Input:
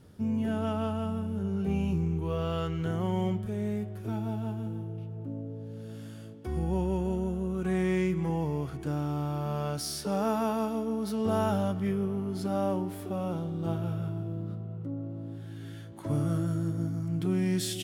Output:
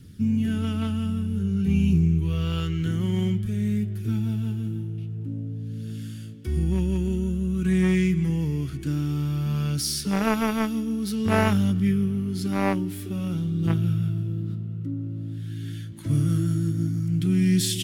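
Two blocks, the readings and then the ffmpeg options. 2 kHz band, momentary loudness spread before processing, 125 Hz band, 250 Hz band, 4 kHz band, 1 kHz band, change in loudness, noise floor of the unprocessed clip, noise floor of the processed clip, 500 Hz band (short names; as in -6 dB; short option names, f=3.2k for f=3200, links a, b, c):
+9.0 dB, 10 LU, +8.0 dB, +6.5 dB, +8.0 dB, +1.0 dB, +6.0 dB, -42 dBFS, -35 dBFS, -0.5 dB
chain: -filter_complex "[0:a]aphaser=in_gain=1:out_gain=1:delay=3.6:decay=0.2:speed=0.51:type=triangular,acrossover=split=330|1600|4900[a][b][c][d];[b]acrusher=bits=3:mix=0:aa=0.5[e];[a][e][c][d]amix=inputs=4:normalize=0,volume=8dB"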